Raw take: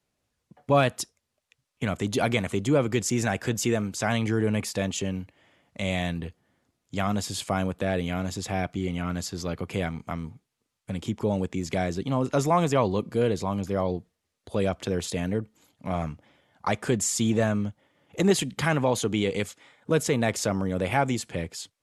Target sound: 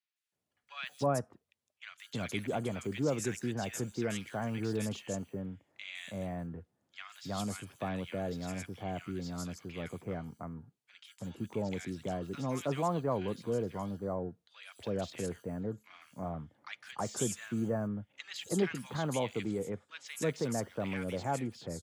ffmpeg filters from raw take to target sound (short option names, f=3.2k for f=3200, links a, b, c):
-filter_complex "[0:a]highpass=79,acrossover=split=130|5800[a][b][c];[a]acrusher=samples=29:mix=1:aa=0.000001[d];[d][b][c]amix=inputs=3:normalize=0,acrossover=split=1500|5300[e][f][g];[g]adelay=160[h];[e]adelay=320[i];[i][f][h]amix=inputs=3:normalize=0,volume=-9dB"